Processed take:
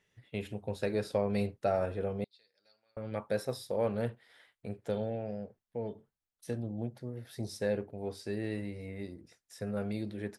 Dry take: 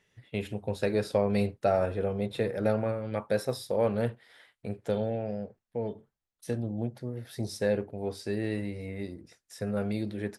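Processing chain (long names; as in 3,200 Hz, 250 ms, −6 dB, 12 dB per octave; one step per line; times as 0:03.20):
0:02.24–0:02.97: resonant band-pass 4,600 Hz, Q 13
level −4.5 dB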